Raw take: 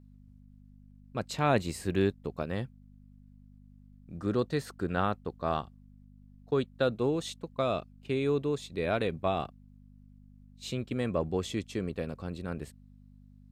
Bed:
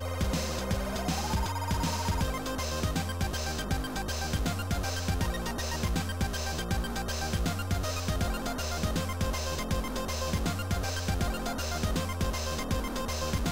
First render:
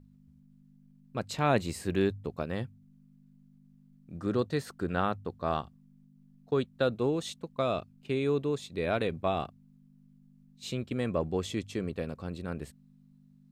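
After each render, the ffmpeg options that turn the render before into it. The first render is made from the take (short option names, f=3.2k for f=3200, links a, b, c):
-af "bandreject=f=50:t=h:w=4,bandreject=f=100:t=h:w=4"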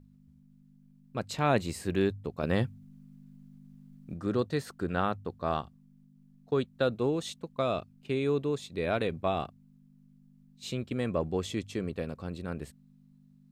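-filter_complex "[0:a]asettb=1/sr,asplit=3[a][b][c];[a]atrim=end=2.434[d];[b]atrim=start=2.43:end=4.14,asetpts=PTS-STARTPTS,afade=t=in:d=0.004:c=qsin,afade=t=out:st=1.706:d=0.004:c=qsin,acontrast=78[e];[c]atrim=start=4.136[f];[d][e]acrossfade=d=0.004:c1=hsin:c2=qsin[g];[g][f]acrossfade=d=0.004:c1=qsin:c2=hsin"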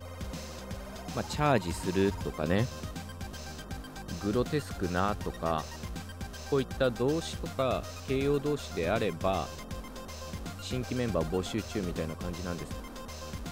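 -filter_complex "[1:a]volume=-9.5dB[a];[0:a][a]amix=inputs=2:normalize=0"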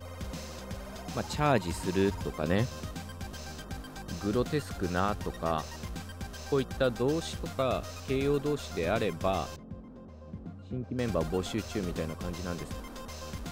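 -filter_complex "[0:a]asettb=1/sr,asplit=3[a][b][c];[a]atrim=end=9.564[d];[b]atrim=start=9.56:end=10.99,asetpts=PTS-STARTPTS,afade=t=in:d=0.004:c=qsin,afade=t=out:st=1.426:d=0.004:c=qsin,bandpass=f=180:t=q:w=0.75[e];[c]atrim=start=10.986[f];[d][e]acrossfade=d=0.004:c1=hsin:c2=qsin[g];[g][f]acrossfade=d=0.004:c1=qsin:c2=hsin"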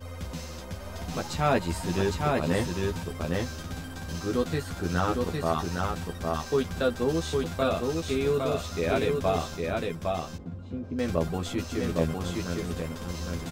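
-filter_complex "[0:a]asplit=2[a][b];[b]adelay=12,volume=-3dB[c];[a][c]amix=inputs=2:normalize=0,asplit=2[d][e];[e]aecho=0:1:809:0.708[f];[d][f]amix=inputs=2:normalize=0"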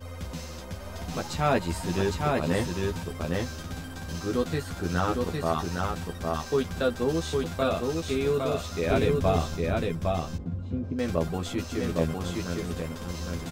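-filter_complex "[0:a]asettb=1/sr,asplit=3[a][b][c];[a]atrim=end=8.904[d];[b]atrim=start=8.9:end=10.93,asetpts=PTS-STARTPTS,afade=t=in:d=0.004:c=qsin,afade=t=out:st=2.026:d=0.004:c=qsin,lowshelf=f=200:g=8.5[e];[c]atrim=start=10.926[f];[d][e]acrossfade=d=0.004:c1=hsin:c2=qsin[g];[g][f]acrossfade=d=0.004:c1=qsin:c2=hsin"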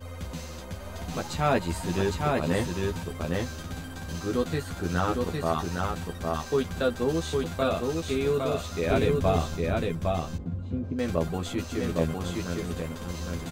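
-af "bandreject=f=5.3k:w=12"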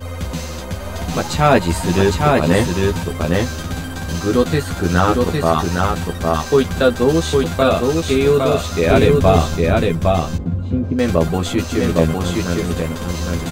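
-af "volume=12dB,alimiter=limit=-1dB:level=0:latency=1"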